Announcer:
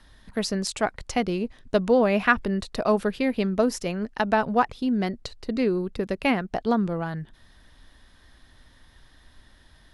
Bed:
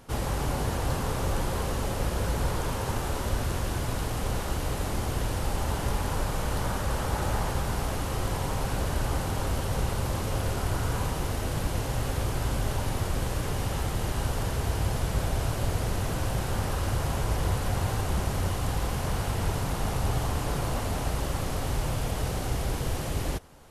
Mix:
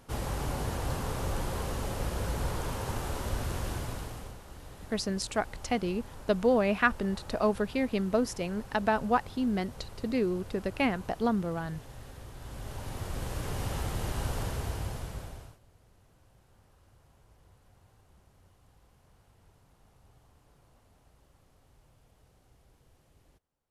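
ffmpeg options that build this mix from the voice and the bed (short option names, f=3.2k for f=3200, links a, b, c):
-filter_complex "[0:a]adelay=4550,volume=-5dB[a];[1:a]volume=9.5dB,afade=t=out:st=3.7:d=0.67:silence=0.211349,afade=t=in:st=12.36:d=1.3:silence=0.199526,afade=t=out:st=14.4:d=1.19:silence=0.0316228[b];[a][b]amix=inputs=2:normalize=0"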